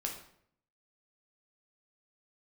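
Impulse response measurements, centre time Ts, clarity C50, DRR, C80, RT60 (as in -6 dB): 26 ms, 6.5 dB, 0.5 dB, 9.5 dB, 0.65 s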